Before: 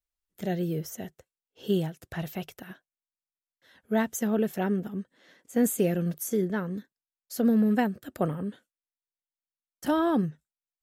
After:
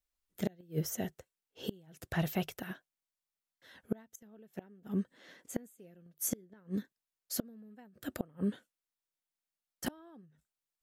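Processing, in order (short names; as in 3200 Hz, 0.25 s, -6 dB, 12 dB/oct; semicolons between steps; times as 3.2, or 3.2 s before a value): flipped gate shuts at -22 dBFS, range -32 dB; gain +1.5 dB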